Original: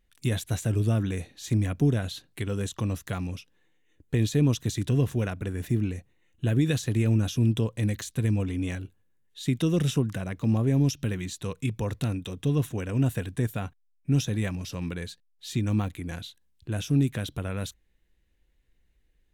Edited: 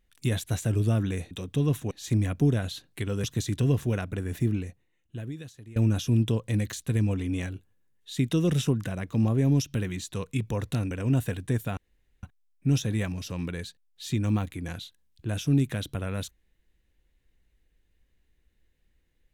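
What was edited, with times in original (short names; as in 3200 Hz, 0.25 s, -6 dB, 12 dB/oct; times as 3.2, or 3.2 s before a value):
2.64–4.53 cut
5.78–7.05 fade out quadratic, to -21 dB
12.2–12.8 move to 1.31
13.66 insert room tone 0.46 s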